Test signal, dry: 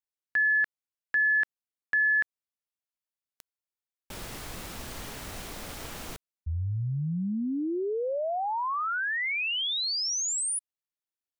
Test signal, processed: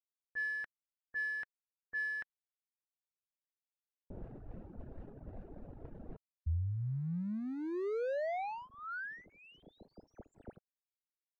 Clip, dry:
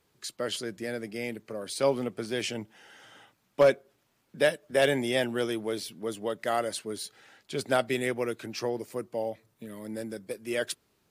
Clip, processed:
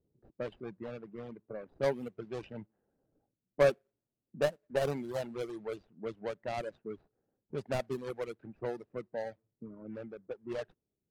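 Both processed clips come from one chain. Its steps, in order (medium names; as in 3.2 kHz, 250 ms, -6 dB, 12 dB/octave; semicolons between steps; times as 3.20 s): median filter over 41 samples; level-controlled noise filter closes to 510 Hz, open at -26.5 dBFS; dynamic bell 290 Hz, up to -5 dB, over -43 dBFS, Q 1.8; reverb removal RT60 1.6 s; trim -2 dB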